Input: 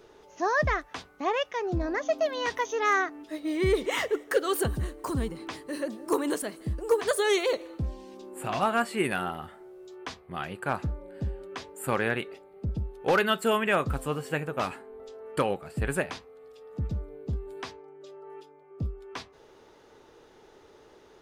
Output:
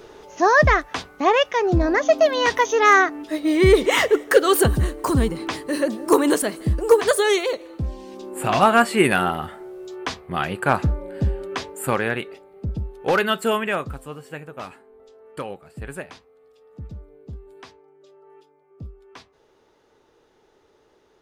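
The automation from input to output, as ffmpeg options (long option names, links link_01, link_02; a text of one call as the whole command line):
ffmpeg -i in.wav -af "volume=20dB,afade=type=out:start_time=6.83:duration=0.74:silence=0.334965,afade=type=in:start_time=7.57:duration=0.95:silence=0.334965,afade=type=out:start_time=11.59:duration=0.43:silence=0.473151,afade=type=out:start_time=13.5:duration=0.49:silence=0.354813" out.wav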